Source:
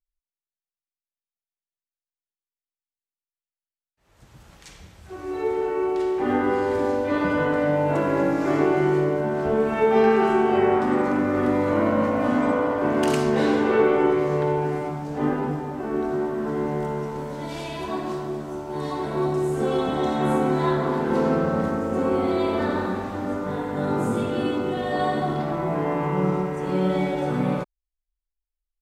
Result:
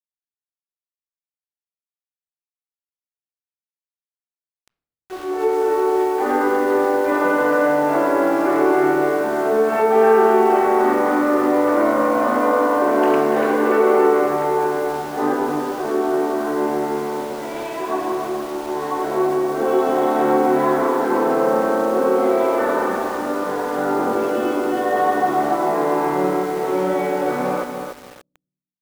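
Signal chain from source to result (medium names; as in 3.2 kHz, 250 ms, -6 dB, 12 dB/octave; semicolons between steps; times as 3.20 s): high-pass 110 Hz 12 dB/octave; three-band isolator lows -23 dB, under 300 Hz, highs -22 dB, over 2.2 kHz; in parallel at +3 dB: peak limiter -18.5 dBFS, peak gain reduction 8.5 dB; on the sum: small samples zeroed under -34.5 dBFS; on a send at -14 dB: reverberation RT60 0.70 s, pre-delay 3 ms; on the sum: bit-crushed delay 289 ms, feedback 35%, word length 6-bit, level -6 dB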